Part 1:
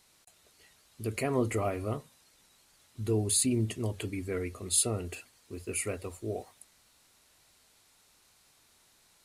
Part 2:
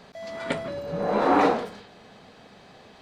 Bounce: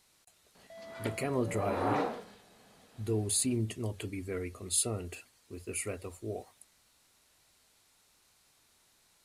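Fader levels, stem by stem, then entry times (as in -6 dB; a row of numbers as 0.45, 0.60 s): -3.0, -11.5 dB; 0.00, 0.55 s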